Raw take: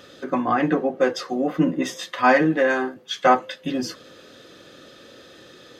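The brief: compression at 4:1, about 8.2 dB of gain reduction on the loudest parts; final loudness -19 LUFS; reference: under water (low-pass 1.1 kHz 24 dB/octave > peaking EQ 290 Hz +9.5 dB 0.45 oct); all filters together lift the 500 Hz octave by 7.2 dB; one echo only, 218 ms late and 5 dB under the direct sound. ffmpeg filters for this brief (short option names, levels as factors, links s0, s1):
-af "equalizer=f=500:t=o:g=7,acompressor=threshold=0.141:ratio=4,lowpass=f=1100:w=0.5412,lowpass=f=1100:w=1.3066,equalizer=f=290:t=o:w=0.45:g=9.5,aecho=1:1:218:0.562"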